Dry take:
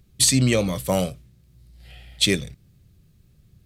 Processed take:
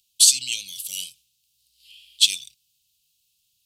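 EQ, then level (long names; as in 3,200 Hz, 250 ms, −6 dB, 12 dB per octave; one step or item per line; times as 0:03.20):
elliptic high-pass filter 2,800 Hz, stop band 40 dB
+4.5 dB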